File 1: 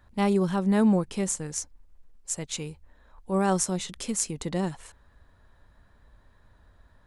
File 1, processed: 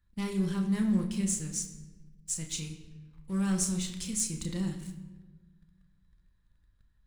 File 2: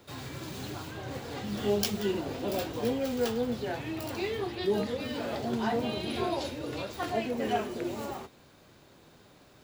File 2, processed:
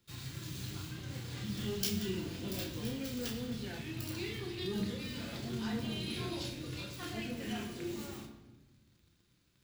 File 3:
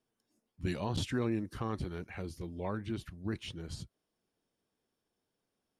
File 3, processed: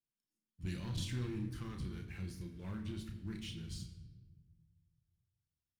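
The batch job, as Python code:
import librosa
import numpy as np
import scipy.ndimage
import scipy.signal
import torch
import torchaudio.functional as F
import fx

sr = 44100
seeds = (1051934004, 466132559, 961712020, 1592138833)

y = fx.doubler(x, sr, ms=32.0, db=-7.0)
y = fx.leveller(y, sr, passes=2)
y = fx.tone_stack(y, sr, knobs='6-0-2')
y = fx.room_shoebox(y, sr, seeds[0], volume_m3=870.0, walls='mixed', distance_m=0.81)
y = y * librosa.db_to_amplitude(4.5)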